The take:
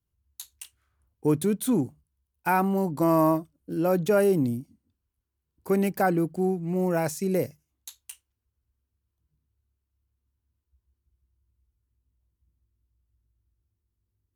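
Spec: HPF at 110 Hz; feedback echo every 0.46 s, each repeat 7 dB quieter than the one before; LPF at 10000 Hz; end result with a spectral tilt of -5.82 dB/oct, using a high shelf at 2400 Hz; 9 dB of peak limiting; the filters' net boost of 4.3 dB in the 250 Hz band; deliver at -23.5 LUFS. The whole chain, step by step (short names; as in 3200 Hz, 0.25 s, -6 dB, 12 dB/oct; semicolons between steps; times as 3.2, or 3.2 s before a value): HPF 110 Hz; LPF 10000 Hz; bell 250 Hz +6.5 dB; high shelf 2400 Hz +5 dB; limiter -17 dBFS; feedback echo 0.46 s, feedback 45%, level -7 dB; gain +3 dB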